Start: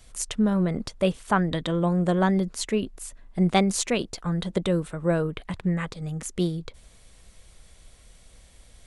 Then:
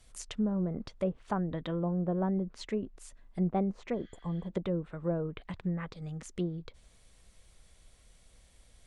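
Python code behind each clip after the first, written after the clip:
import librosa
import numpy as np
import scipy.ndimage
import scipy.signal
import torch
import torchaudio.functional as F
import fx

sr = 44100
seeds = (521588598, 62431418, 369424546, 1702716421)

y = fx.env_lowpass_down(x, sr, base_hz=810.0, full_db=-19.5)
y = fx.spec_repair(y, sr, seeds[0], start_s=3.96, length_s=0.48, low_hz=1200.0, high_hz=6900.0, source='after')
y = y * librosa.db_to_amplitude(-8.0)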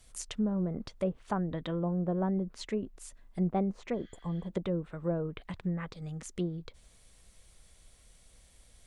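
y = fx.high_shelf(x, sr, hz=6700.0, db=6.0)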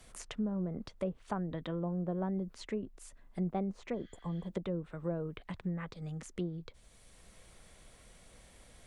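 y = fx.band_squash(x, sr, depth_pct=40)
y = y * librosa.db_to_amplitude(-4.0)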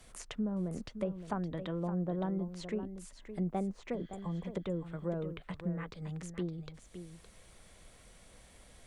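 y = x + 10.0 ** (-10.5 / 20.0) * np.pad(x, (int(565 * sr / 1000.0), 0))[:len(x)]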